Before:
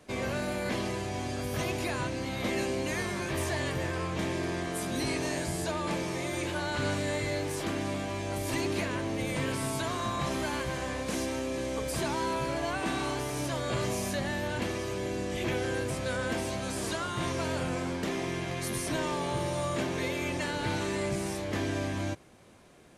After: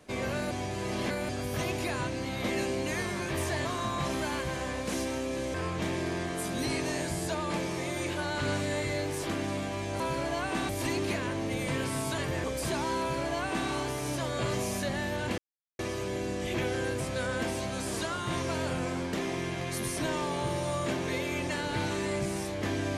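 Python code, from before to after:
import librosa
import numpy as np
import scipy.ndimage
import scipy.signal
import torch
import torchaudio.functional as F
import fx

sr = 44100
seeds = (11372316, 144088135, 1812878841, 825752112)

y = fx.edit(x, sr, fx.reverse_span(start_s=0.51, length_s=0.78),
    fx.swap(start_s=3.65, length_s=0.26, other_s=9.86, other_length_s=1.89),
    fx.duplicate(start_s=12.31, length_s=0.69, to_s=8.37),
    fx.insert_silence(at_s=14.69, length_s=0.41), tone=tone)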